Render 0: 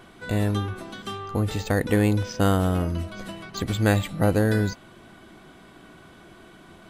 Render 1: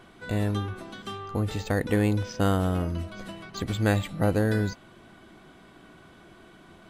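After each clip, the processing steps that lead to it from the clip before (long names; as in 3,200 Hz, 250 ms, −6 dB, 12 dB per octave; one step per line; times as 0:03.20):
high-shelf EQ 8,700 Hz −4.5 dB
level −3 dB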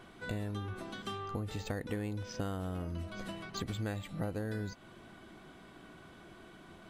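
downward compressor 5 to 1, threshold −32 dBFS, peak gain reduction 13.5 dB
level −2.5 dB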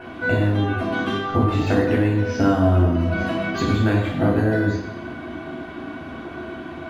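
convolution reverb RT60 1.1 s, pre-delay 3 ms, DRR −3.5 dB
level +3.5 dB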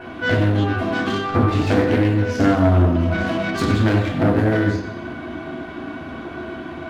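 phase distortion by the signal itself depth 0.23 ms
level +2 dB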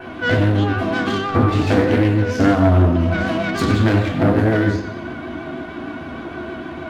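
pitch vibrato 6.5 Hz 37 cents
level +1.5 dB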